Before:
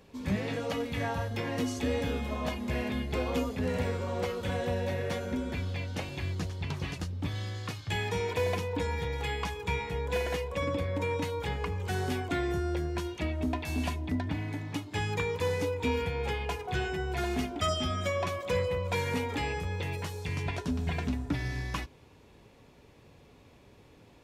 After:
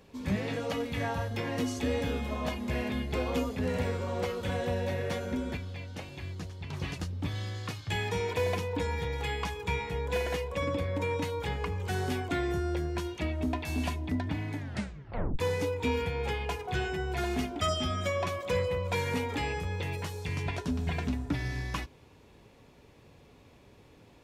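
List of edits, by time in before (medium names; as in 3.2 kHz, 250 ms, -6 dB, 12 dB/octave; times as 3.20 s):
5.57–6.73 s: gain -5.5 dB
14.57 s: tape stop 0.82 s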